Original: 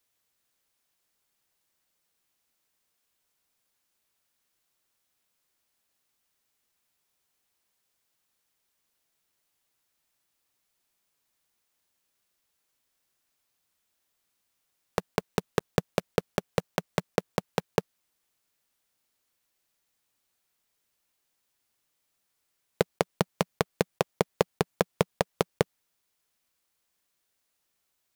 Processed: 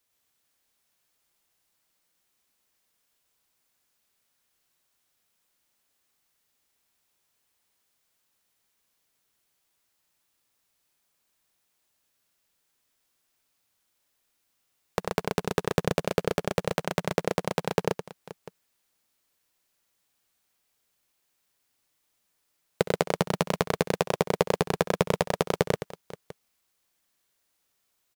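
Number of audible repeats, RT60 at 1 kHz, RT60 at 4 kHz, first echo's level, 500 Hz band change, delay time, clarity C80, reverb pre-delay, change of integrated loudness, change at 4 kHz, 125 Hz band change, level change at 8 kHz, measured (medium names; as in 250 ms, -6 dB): 6, no reverb, no reverb, -16.5 dB, +3.0 dB, 65 ms, no reverb, no reverb, +2.5 dB, +3.0 dB, +3.0 dB, +3.0 dB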